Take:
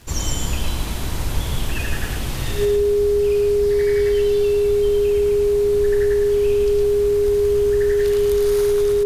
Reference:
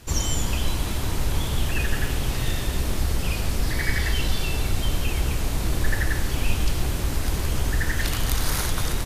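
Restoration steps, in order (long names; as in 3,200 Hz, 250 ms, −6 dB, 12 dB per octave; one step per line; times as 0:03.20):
click removal
notch filter 410 Hz, Q 30
echo removal 110 ms −4.5 dB
level correction +7 dB, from 0:02.65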